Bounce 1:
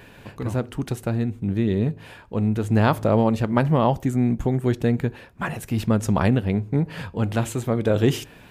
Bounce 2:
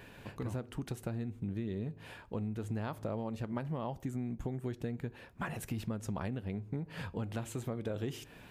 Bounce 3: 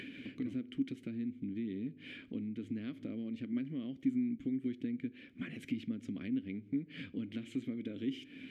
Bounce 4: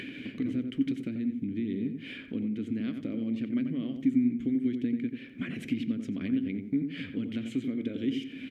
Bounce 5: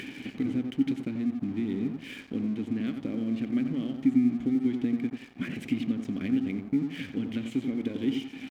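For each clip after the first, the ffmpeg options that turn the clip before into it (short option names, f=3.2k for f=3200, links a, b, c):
-af "acompressor=threshold=-28dB:ratio=6,volume=-6.5dB"
-filter_complex "[0:a]asplit=3[a][b][c];[a]bandpass=f=270:t=q:w=8,volume=0dB[d];[b]bandpass=f=2.29k:t=q:w=8,volume=-6dB[e];[c]bandpass=f=3.01k:t=q:w=8,volume=-9dB[f];[d][e][f]amix=inputs=3:normalize=0,acompressor=mode=upward:threshold=-50dB:ratio=2.5,volume=10.5dB"
-filter_complex "[0:a]asplit=2[a][b];[b]adelay=89,lowpass=f=1.7k:p=1,volume=-6dB,asplit=2[c][d];[d]adelay=89,lowpass=f=1.7k:p=1,volume=0.32,asplit=2[e][f];[f]adelay=89,lowpass=f=1.7k:p=1,volume=0.32,asplit=2[g][h];[h]adelay=89,lowpass=f=1.7k:p=1,volume=0.32[i];[a][c][e][g][i]amix=inputs=5:normalize=0,volume=6.5dB"
-af "aeval=exprs='sgn(val(0))*max(abs(val(0))-0.00282,0)':c=same,volume=2.5dB"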